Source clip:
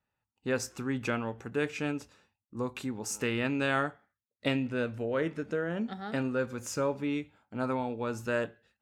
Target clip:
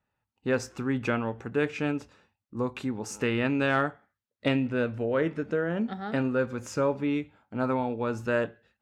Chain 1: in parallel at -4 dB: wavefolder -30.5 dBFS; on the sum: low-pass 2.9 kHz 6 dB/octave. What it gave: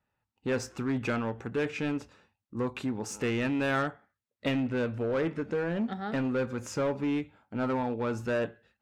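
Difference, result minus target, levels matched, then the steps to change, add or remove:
wavefolder: distortion +31 dB
change: wavefolder -19 dBFS

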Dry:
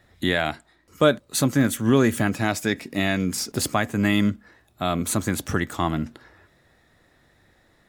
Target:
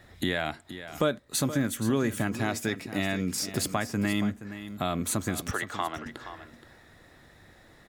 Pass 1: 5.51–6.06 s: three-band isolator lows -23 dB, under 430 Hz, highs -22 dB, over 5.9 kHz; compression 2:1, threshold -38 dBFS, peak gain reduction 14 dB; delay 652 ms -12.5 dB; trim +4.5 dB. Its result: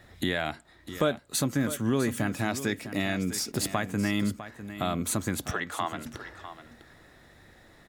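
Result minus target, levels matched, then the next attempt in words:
echo 179 ms late
5.51–6.06 s: three-band isolator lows -23 dB, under 430 Hz, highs -22 dB, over 5.9 kHz; compression 2:1, threshold -38 dBFS, peak gain reduction 14 dB; delay 473 ms -12.5 dB; trim +4.5 dB

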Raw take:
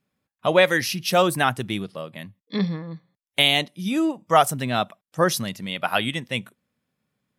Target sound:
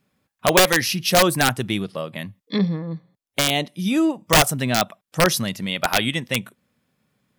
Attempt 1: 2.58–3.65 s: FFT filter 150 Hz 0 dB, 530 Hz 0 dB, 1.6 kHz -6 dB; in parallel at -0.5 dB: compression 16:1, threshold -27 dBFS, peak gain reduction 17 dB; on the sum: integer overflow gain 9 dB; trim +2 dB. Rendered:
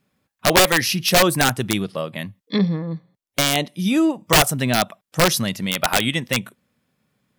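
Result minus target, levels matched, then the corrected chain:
compression: peak gain reduction -8 dB
2.58–3.65 s: FFT filter 150 Hz 0 dB, 530 Hz 0 dB, 1.6 kHz -6 dB; in parallel at -0.5 dB: compression 16:1, threshold -35.5 dBFS, peak gain reduction 25 dB; on the sum: integer overflow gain 9 dB; trim +2 dB

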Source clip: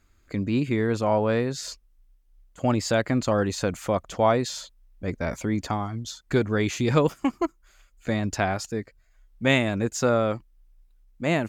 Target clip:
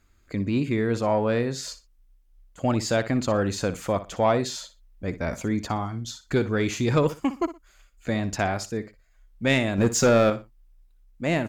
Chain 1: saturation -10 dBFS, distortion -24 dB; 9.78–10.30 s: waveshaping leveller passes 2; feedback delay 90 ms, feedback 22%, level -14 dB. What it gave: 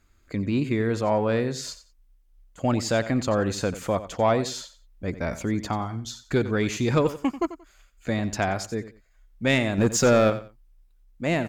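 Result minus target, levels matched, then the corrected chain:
echo 30 ms late
saturation -10 dBFS, distortion -24 dB; 9.78–10.30 s: waveshaping leveller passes 2; feedback delay 60 ms, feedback 22%, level -14 dB

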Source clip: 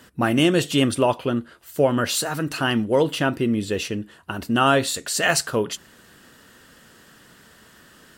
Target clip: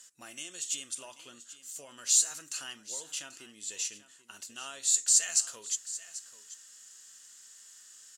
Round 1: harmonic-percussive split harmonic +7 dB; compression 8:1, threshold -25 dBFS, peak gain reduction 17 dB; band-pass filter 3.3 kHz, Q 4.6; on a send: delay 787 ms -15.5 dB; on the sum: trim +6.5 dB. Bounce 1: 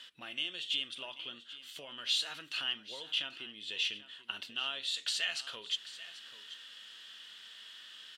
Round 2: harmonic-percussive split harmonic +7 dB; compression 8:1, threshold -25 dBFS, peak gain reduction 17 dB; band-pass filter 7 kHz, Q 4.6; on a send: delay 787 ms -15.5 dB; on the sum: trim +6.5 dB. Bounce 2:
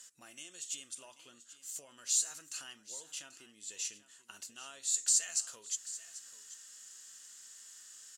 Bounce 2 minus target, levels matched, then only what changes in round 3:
compression: peak gain reduction +7 dB
change: compression 8:1, threshold -17 dBFS, peak gain reduction 10 dB

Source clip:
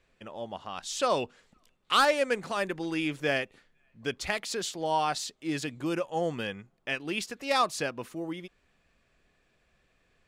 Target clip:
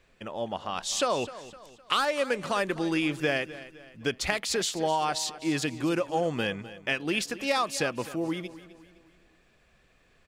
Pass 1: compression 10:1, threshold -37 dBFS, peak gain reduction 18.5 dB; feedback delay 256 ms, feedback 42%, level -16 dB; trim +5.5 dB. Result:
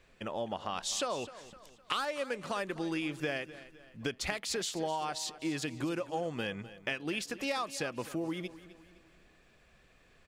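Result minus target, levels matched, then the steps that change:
compression: peak gain reduction +8 dB
change: compression 10:1, threshold -28 dBFS, peak gain reduction 10.5 dB

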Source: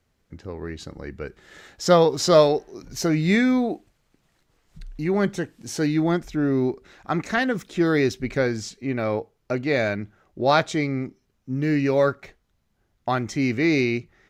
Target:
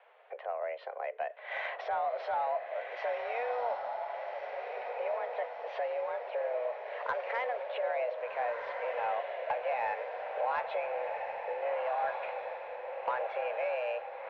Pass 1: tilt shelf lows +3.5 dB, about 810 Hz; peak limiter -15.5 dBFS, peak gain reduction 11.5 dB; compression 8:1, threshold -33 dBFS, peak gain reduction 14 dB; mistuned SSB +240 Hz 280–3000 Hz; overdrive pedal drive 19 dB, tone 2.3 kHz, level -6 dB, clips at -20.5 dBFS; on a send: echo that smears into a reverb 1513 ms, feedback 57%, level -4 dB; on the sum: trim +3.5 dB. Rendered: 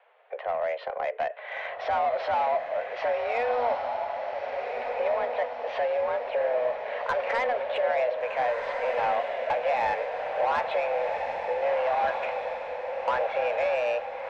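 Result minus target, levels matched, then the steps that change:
compression: peak gain reduction -9.5 dB
change: compression 8:1, threshold -44 dBFS, peak gain reduction 23.5 dB

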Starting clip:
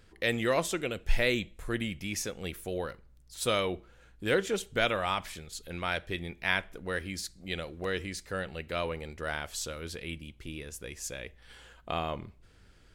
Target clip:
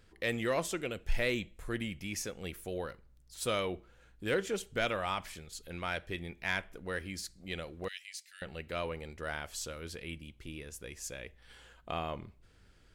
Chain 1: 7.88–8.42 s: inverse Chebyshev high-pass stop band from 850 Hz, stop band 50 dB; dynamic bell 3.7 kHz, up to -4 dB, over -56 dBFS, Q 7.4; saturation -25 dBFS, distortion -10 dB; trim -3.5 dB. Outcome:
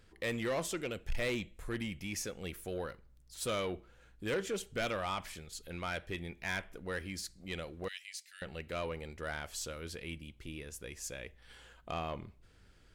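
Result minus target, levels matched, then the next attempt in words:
saturation: distortion +11 dB
7.88–8.42 s: inverse Chebyshev high-pass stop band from 850 Hz, stop band 50 dB; dynamic bell 3.7 kHz, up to -4 dB, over -56 dBFS, Q 7.4; saturation -15.5 dBFS, distortion -22 dB; trim -3.5 dB

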